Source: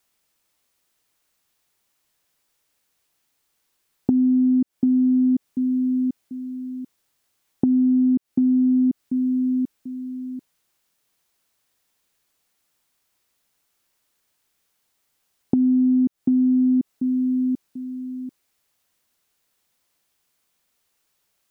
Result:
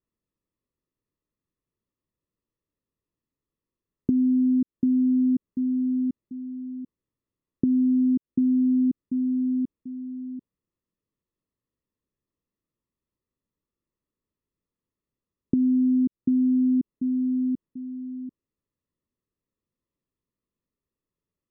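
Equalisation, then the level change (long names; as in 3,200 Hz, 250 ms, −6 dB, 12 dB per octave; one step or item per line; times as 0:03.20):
moving average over 58 samples
−1.5 dB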